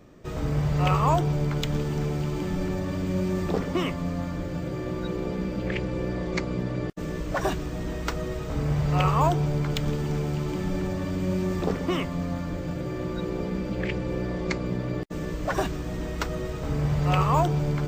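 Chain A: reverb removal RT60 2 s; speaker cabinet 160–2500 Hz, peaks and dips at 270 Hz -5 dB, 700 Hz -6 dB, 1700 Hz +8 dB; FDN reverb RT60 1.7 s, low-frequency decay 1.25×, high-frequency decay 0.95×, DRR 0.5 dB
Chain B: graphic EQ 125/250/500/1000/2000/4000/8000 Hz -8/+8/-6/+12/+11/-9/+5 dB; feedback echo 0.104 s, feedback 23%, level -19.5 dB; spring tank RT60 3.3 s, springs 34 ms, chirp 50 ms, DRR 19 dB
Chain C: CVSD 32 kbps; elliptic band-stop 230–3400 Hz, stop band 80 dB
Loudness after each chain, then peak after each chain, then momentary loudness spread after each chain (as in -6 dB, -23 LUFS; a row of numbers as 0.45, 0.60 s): -30.5, -23.0, -31.0 LUFS; -10.0, -2.5, -15.5 dBFS; 10, 14, 9 LU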